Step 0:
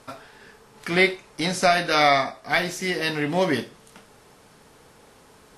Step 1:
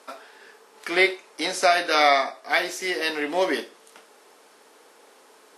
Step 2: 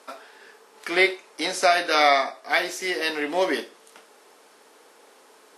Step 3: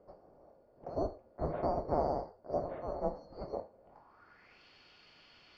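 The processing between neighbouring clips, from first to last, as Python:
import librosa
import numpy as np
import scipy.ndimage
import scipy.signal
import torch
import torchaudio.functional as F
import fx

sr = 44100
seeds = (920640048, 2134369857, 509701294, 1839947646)

y1 = scipy.signal.sosfilt(scipy.signal.butter(4, 310.0, 'highpass', fs=sr, output='sos'), x)
y2 = y1
y3 = fx.band_swap(y2, sr, width_hz=4000)
y3 = fx.spacing_loss(y3, sr, db_at_10k=22)
y3 = fx.filter_sweep_lowpass(y3, sr, from_hz=580.0, to_hz=3000.0, start_s=3.8, end_s=4.63, q=3.7)
y3 = y3 * librosa.db_to_amplitude(1.0)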